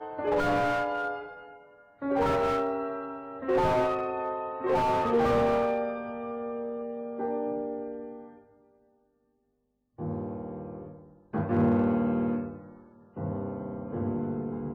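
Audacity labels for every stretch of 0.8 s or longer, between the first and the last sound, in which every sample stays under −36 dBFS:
8.230000	9.990000	silence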